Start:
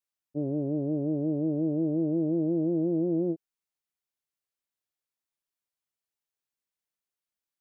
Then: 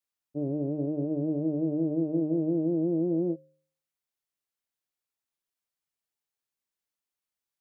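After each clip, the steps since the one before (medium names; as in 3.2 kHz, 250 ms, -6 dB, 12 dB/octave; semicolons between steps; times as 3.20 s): de-hum 76.23 Hz, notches 8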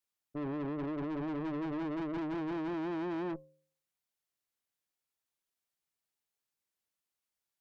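valve stage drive 37 dB, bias 0.55; trim +2.5 dB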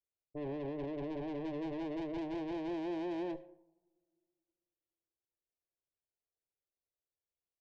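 static phaser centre 530 Hz, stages 4; two-slope reverb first 0.78 s, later 2.5 s, from -18 dB, DRR 14 dB; level-controlled noise filter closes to 520 Hz, open at -35.5 dBFS; trim +2 dB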